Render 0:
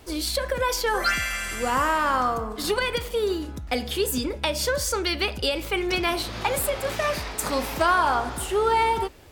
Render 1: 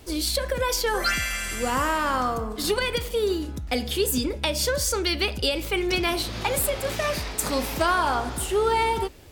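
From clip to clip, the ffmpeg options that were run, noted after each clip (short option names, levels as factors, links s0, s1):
-af "equalizer=f=1100:w=0.56:g=-5,volume=1.33"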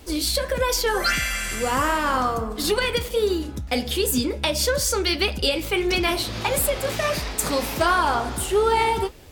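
-af "flanger=delay=3.6:depth=7:regen=-57:speed=1.5:shape=sinusoidal,volume=2.11"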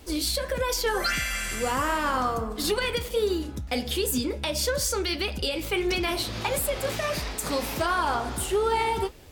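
-af "alimiter=limit=0.224:level=0:latency=1:release=140,volume=0.708"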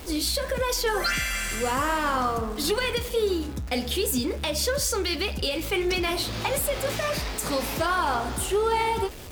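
-af "aeval=exprs='val(0)+0.5*0.0126*sgn(val(0))':c=same"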